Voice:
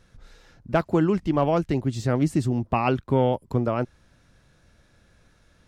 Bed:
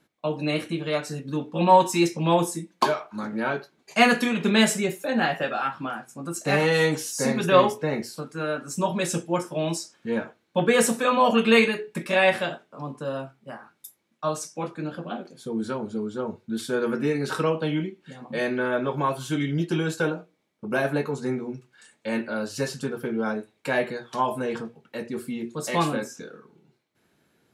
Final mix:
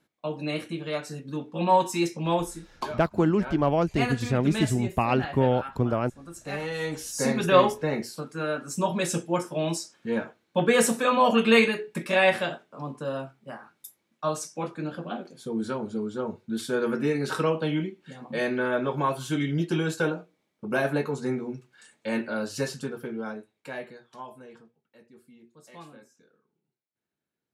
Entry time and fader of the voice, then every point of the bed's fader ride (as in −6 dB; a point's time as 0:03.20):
2.25 s, −1.5 dB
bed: 0:02.36 −4.5 dB
0:02.70 −11 dB
0:06.77 −11 dB
0:07.21 −1 dB
0:22.58 −1 dB
0:24.83 −22.5 dB